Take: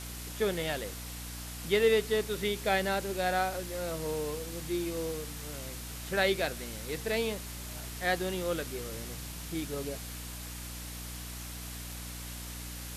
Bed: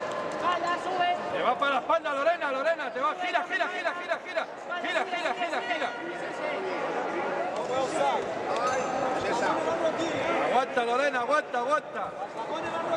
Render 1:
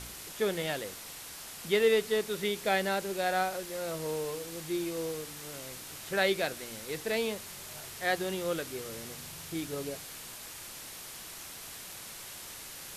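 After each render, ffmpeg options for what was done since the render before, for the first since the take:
-af "bandreject=f=60:t=h:w=4,bandreject=f=120:t=h:w=4,bandreject=f=180:t=h:w=4,bandreject=f=240:t=h:w=4,bandreject=f=300:t=h:w=4"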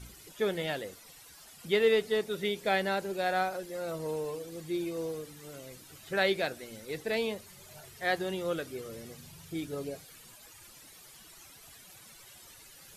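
-af "afftdn=nr=13:nf=-45"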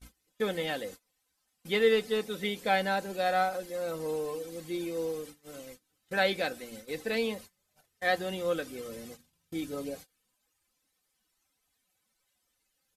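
-af "agate=range=-26dB:threshold=-46dB:ratio=16:detection=peak,aecho=1:1:3.9:0.52"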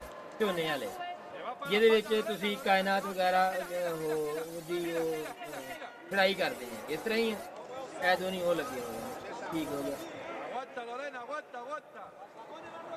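-filter_complex "[1:a]volume=-14dB[a];[0:a][a]amix=inputs=2:normalize=0"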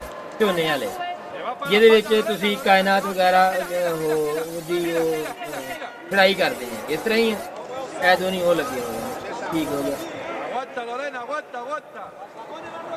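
-af "volume=11dB"

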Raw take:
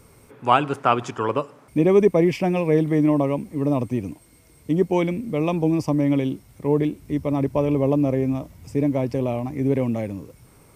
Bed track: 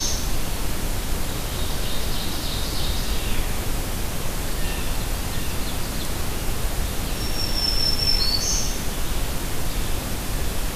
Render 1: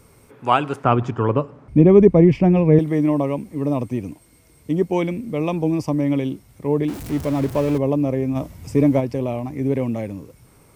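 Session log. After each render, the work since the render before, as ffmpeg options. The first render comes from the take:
-filter_complex "[0:a]asettb=1/sr,asplit=3[a][b][c];[a]atrim=end=0.844[d];[b]atrim=start=0.84:end=2.79,asetpts=PTS-STARTPTS,afade=t=in:d=0.004:c=qsin,afade=t=out:st=1.946:d=0.004:c=qsin,aemphasis=mode=reproduction:type=riaa[e];[c]atrim=start=2.786[f];[d][e]acrossfade=d=0.004:c1=hsin:c2=qsin[g];[g][f]acrossfade=d=0.004:c1=qsin:c2=hsin,asettb=1/sr,asplit=3[h][i][j];[h]atrim=end=6.884[k];[i]atrim=start=6.88:end=7.78,asetpts=PTS-STARTPTS,afade=t=in:d=0.004:c=qsin,afade=t=out:st=0.896:d=0.004:c=qsin,aeval=exprs='val(0)+0.5*0.0376*sgn(val(0))':c=same[l];[j]atrim=start=7.776[m];[k][l]acrossfade=d=0.004:c1=hsin:c2=qsin[n];[n][m]acrossfade=d=0.004:c1=qsin:c2=hsin,asplit=3[o][p][q];[o]afade=t=out:st=8.35:d=0.02[r];[p]acontrast=48,afade=t=in:st=8.35:d=0.02,afade=t=out:st=8.99:d=0.02[s];[q]afade=t=in:st=8.99:d=0.02[t];[r][s][t]amix=inputs=3:normalize=0"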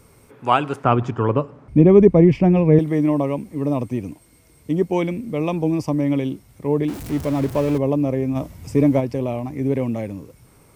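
-af anull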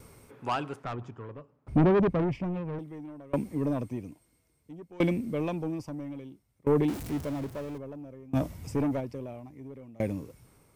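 -af "asoftclip=type=tanh:threshold=-15dB,aeval=exprs='val(0)*pow(10,-26*if(lt(mod(0.6*n/s,1),2*abs(0.6)/1000),1-mod(0.6*n/s,1)/(2*abs(0.6)/1000),(mod(0.6*n/s,1)-2*abs(0.6)/1000)/(1-2*abs(0.6)/1000))/20)':c=same"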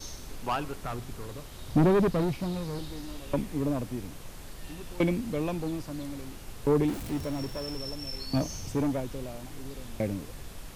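-filter_complex "[1:a]volume=-18dB[a];[0:a][a]amix=inputs=2:normalize=0"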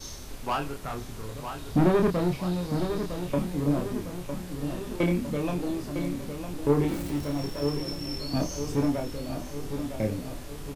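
-filter_complex "[0:a]asplit=2[a][b];[b]adelay=28,volume=-4dB[c];[a][c]amix=inputs=2:normalize=0,asplit=2[d][e];[e]adelay=956,lowpass=f=3.4k:p=1,volume=-8dB,asplit=2[f][g];[g]adelay=956,lowpass=f=3.4k:p=1,volume=0.55,asplit=2[h][i];[i]adelay=956,lowpass=f=3.4k:p=1,volume=0.55,asplit=2[j][k];[k]adelay=956,lowpass=f=3.4k:p=1,volume=0.55,asplit=2[l][m];[m]adelay=956,lowpass=f=3.4k:p=1,volume=0.55,asplit=2[n][o];[o]adelay=956,lowpass=f=3.4k:p=1,volume=0.55,asplit=2[p][q];[q]adelay=956,lowpass=f=3.4k:p=1,volume=0.55[r];[d][f][h][j][l][n][p][r]amix=inputs=8:normalize=0"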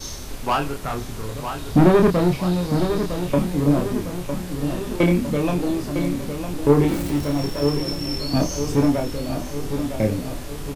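-af "volume=7.5dB"

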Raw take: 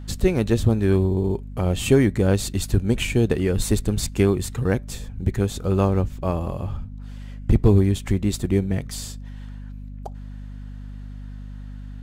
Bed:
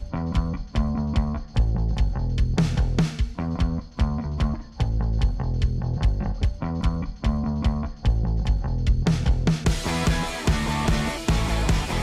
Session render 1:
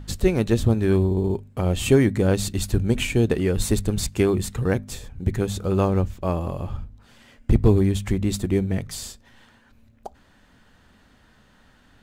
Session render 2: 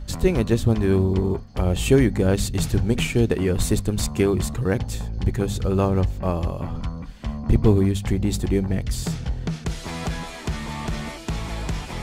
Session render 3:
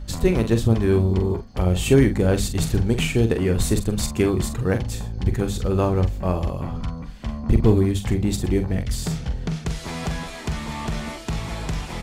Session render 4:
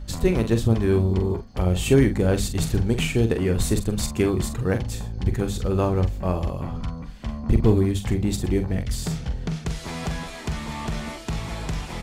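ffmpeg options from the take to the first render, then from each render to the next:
-af "bandreject=f=50:t=h:w=4,bandreject=f=100:t=h:w=4,bandreject=f=150:t=h:w=4,bandreject=f=200:t=h:w=4,bandreject=f=250:t=h:w=4"
-filter_complex "[1:a]volume=-6dB[a];[0:a][a]amix=inputs=2:normalize=0"
-filter_complex "[0:a]asplit=2[a][b];[b]adelay=44,volume=-8.5dB[c];[a][c]amix=inputs=2:normalize=0"
-af "volume=-1.5dB"

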